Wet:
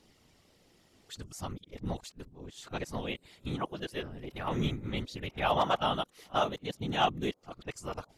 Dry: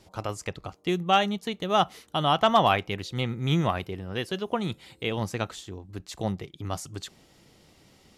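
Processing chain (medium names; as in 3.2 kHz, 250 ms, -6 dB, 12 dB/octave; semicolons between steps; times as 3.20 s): reverse the whole clip; phaser 0.59 Hz, delay 3.3 ms, feedback 21%; whisper effect; trim -7 dB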